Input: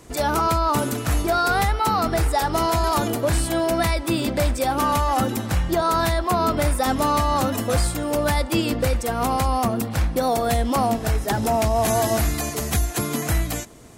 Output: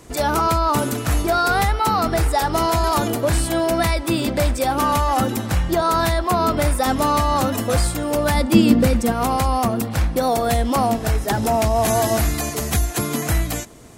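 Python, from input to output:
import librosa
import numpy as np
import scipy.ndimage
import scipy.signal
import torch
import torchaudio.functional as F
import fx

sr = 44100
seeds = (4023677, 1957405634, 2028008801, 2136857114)

y = fx.peak_eq(x, sr, hz=220.0, db=14.0, octaves=0.72, at=(8.34, 9.12))
y = F.gain(torch.from_numpy(y), 2.0).numpy()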